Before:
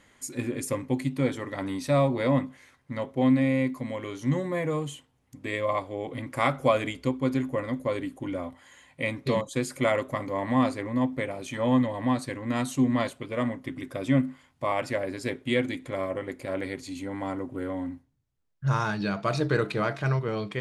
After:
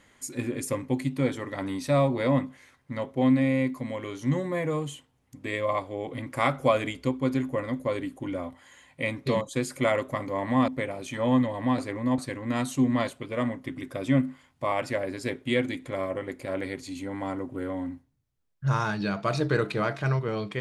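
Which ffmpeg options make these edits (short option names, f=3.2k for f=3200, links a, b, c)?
-filter_complex "[0:a]asplit=4[a][b][c][d];[a]atrim=end=10.682[e];[b]atrim=start=11.078:end=12.182[f];[c]atrim=start=10.678:end=11.082[g];[d]atrim=start=12.178[h];[e][f]acrossfade=d=0.004:c1=hsin:c2=hsin[i];[i][g]acrossfade=d=0.004:c1=hsin:c2=hsin[j];[j][h]acrossfade=d=0.004:c1=hsin:c2=hsin"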